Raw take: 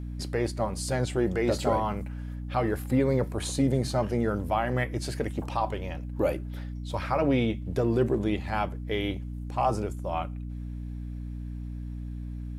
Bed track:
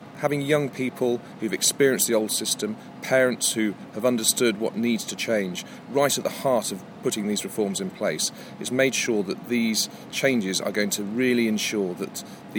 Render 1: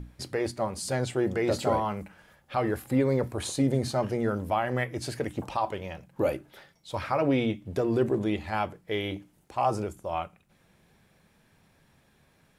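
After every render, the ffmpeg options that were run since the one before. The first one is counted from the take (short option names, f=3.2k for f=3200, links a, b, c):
-af "bandreject=f=60:t=h:w=6,bandreject=f=120:t=h:w=6,bandreject=f=180:t=h:w=6,bandreject=f=240:t=h:w=6,bandreject=f=300:t=h:w=6"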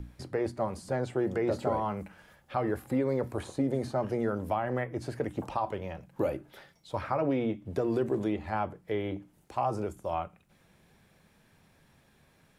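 -filter_complex "[0:a]acrossover=split=230|1700[a][b][c];[a]acompressor=threshold=-37dB:ratio=4[d];[b]acompressor=threshold=-26dB:ratio=4[e];[c]acompressor=threshold=-53dB:ratio=4[f];[d][e][f]amix=inputs=3:normalize=0"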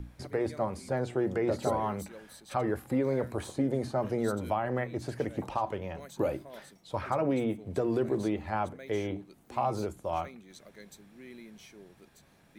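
-filter_complex "[1:a]volume=-27dB[a];[0:a][a]amix=inputs=2:normalize=0"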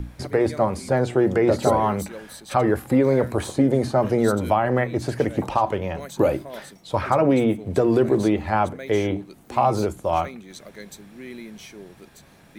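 -af "volume=10.5dB"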